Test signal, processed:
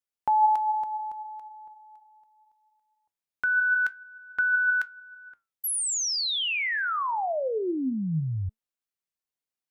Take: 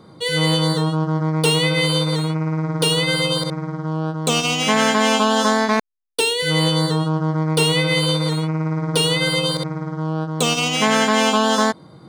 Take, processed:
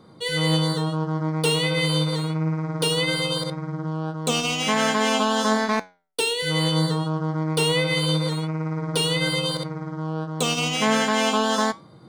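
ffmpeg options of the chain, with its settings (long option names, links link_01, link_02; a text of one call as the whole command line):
ffmpeg -i in.wav -af "flanger=delay=3.8:depth=10:regen=80:speed=0.23:shape=triangular" out.wav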